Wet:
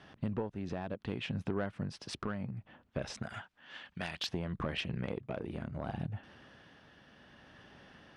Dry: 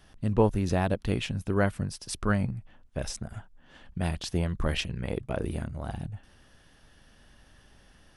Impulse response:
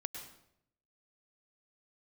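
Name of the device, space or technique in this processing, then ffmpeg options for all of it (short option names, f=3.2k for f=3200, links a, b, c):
AM radio: -filter_complex "[0:a]asettb=1/sr,asplit=3[a][b][c];[a]atrim=end=3.224[d];[b]atrim=start=3.22:end=4.27,asetpts=PTS-STARTPTS,afade=t=in:d=0.004:c=qsin,afade=t=out:st=1.046:d=0.004:c=qsin,tiltshelf=f=970:g=-9.5[e];[c]atrim=start=4.266[f];[d][e]acrossfade=d=0.004:c1=hsin:c2=qsin[g];[g][f]acrossfade=d=0.004:c1=qsin:c2=hsin,highpass=130,lowpass=3.3k,acompressor=threshold=-35dB:ratio=10,asoftclip=type=tanh:threshold=-28.5dB,tremolo=f=0.64:d=0.3,volume=5dB"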